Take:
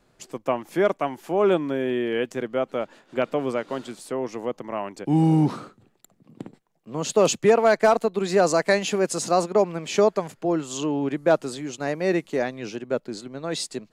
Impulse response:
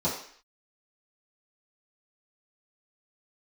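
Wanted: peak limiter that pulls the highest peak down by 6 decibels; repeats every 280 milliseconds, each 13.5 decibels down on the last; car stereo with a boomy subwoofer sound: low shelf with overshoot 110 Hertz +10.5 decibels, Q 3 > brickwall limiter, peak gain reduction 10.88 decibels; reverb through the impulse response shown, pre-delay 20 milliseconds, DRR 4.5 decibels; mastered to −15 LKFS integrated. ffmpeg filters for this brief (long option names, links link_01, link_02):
-filter_complex "[0:a]alimiter=limit=-14dB:level=0:latency=1,aecho=1:1:280|560:0.211|0.0444,asplit=2[link_01][link_02];[1:a]atrim=start_sample=2205,adelay=20[link_03];[link_02][link_03]afir=irnorm=-1:irlink=0,volume=-14.5dB[link_04];[link_01][link_04]amix=inputs=2:normalize=0,lowshelf=frequency=110:width_type=q:width=3:gain=10.5,volume=13.5dB,alimiter=limit=-5.5dB:level=0:latency=1"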